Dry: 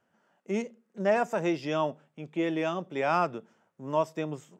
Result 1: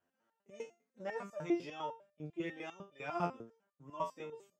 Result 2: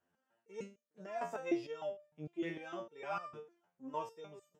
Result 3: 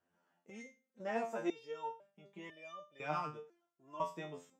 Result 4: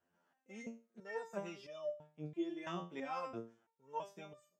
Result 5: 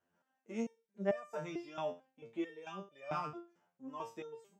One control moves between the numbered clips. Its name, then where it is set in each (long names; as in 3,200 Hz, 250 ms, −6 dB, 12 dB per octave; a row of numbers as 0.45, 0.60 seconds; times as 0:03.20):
step-sequenced resonator, speed: 10, 6.6, 2, 3, 4.5 Hertz